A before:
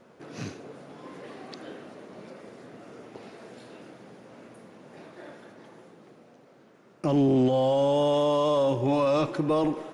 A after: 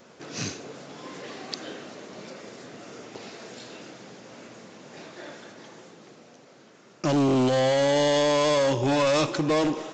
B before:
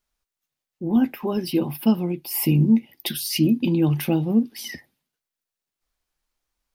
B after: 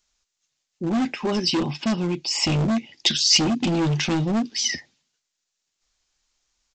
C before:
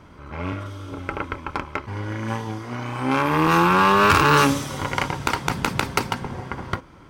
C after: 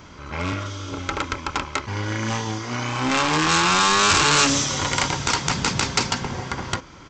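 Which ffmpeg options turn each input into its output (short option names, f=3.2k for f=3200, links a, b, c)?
-af "aresample=16000,asoftclip=type=hard:threshold=-21.5dB,aresample=44100,crystalizer=i=4.5:c=0,volume=2dB"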